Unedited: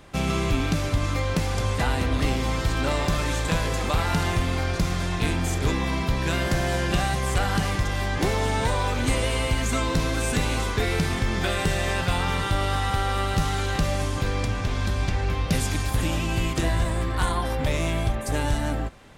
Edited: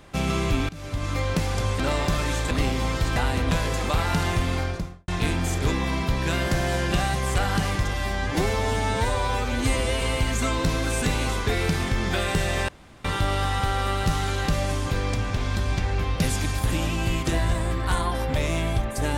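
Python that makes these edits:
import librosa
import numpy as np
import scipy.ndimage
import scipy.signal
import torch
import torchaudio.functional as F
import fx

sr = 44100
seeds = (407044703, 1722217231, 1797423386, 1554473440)

y = fx.studio_fade_out(x, sr, start_s=4.54, length_s=0.54)
y = fx.edit(y, sr, fx.fade_in_from(start_s=0.69, length_s=0.52, floor_db=-22.5),
    fx.swap(start_s=1.8, length_s=0.35, other_s=2.8, other_length_s=0.71),
    fx.stretch_span(start_s=7.93, length_s=1.39, factor=1.5),
    fx.room_tone_fill(start_s=11.99, length_s=0.36), tone=tone)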